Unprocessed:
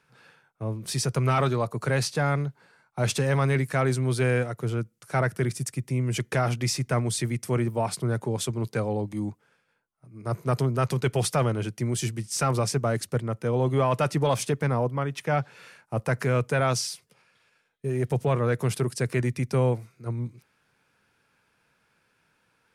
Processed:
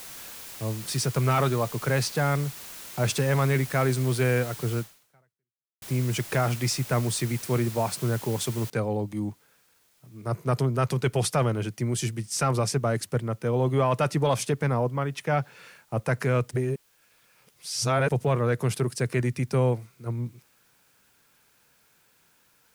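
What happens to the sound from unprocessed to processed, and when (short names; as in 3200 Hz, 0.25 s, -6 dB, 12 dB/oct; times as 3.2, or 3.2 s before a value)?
4.78–5.82 fade out exponential
8.7 noise floor step -42 dB -65 dB
16.51–18.09 reverse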